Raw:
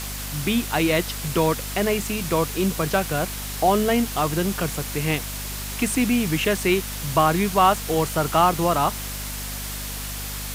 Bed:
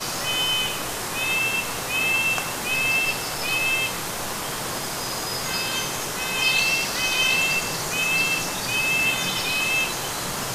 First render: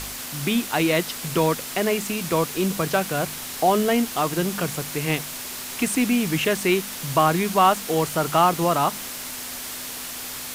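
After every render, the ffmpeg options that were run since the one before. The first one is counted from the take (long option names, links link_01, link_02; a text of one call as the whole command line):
ffmpeg -i in.wav -af "bandreject=frequency=50:width_type=h:width=4,bandreject=frequency=100:width_type=h:width=4,bandreject=frequency=150:width_type=h:width=4,bandreject=frequency=200:width_type=h:width=4" out.wav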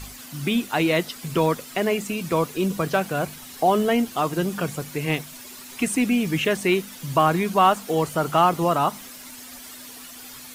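ffmpeg -i in.wav -af "afftdn=noise_reduction=11:noise_floor=-34" out.wav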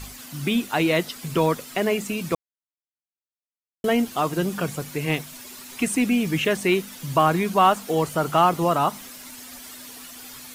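ffmpeg -i in.wav -filter_complex "[0:a]asplit=3[link_01][link_02][link_03];[link_01]atrim=end=2.35,asetpts=PTS-STARTPTS,afade=type=out:start_time=2.346:duration=0.004:curve=hsin[link_04];[link_02]atrim=start=2.35:end=3.84,asetpts=PTS-STARTPTS,volume=0[link_05];[link_03]atrim=start=3.84,asetpts=PTS-STARTPTS,afade=type=in:duration=0.004:curve=hsin[link_06];[link_04][link_05][link_06]concat=n=3:v=0:a=1" out.wav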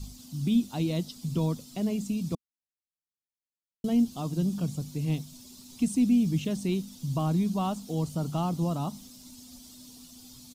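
ffmpeg -i in.wav -af "firequalizer=gain_entry='entry(230,0);entry(390,-14);entry(570,-14);entry(840,-15);entry(1700,-27);entry(3600,-9);entry(5200,-6);entry(11000,-13)':delay=0.05:min_phase=1" out.wav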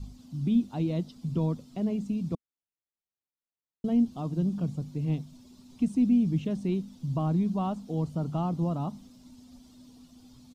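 ffmpeg -i in.wav -af "lowpass=frequency=1300:poles=1" out.wav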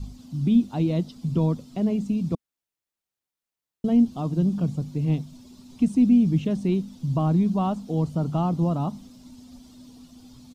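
ffmpeg -i in.wav -af "volume=5.5dB" out.wav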